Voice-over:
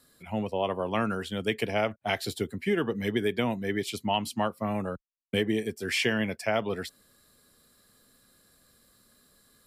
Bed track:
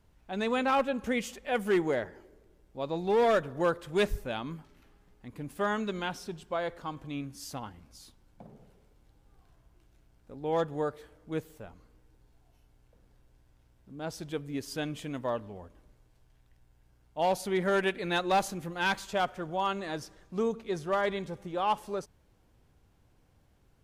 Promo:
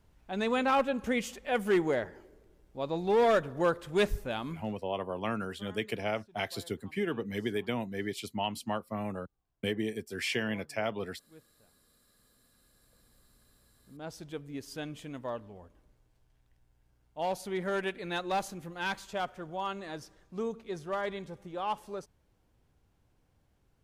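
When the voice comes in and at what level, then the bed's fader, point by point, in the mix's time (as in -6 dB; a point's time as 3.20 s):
4.30 s, -5.5 dB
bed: 4.67 s 0 dB
4.98 s -22 dB
11.71 s -22 dB
13.07 s -5 dB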